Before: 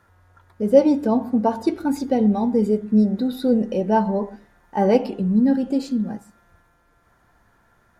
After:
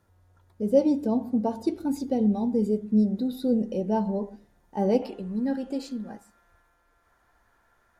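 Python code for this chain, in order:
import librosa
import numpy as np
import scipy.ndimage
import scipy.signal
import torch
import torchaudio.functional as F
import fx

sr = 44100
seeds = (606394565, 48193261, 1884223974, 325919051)

y = fx.peak_eq(x, sr, hz=fx.steps((0.0, 1500.0), (5.02, 150.0)), db=-10.5, octaves=1.7)
y = y * librosa.db_to_amplitude(-4.5)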